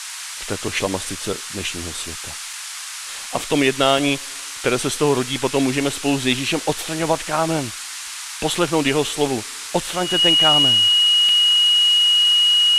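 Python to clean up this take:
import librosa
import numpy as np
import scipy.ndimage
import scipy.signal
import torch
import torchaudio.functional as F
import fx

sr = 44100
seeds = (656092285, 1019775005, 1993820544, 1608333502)

y = fx.notch(x, sr, hz=2900.0, q=30.0)
y = fx.fix_interpolate(y, sr, at_s=(2.53, 3.98, 8.55, 11.29), length_ms=2.1)
y = fx.noise_reduce(y, sr, print_start_s=2.45, print_end_s=2.95, reduce_db=30.0)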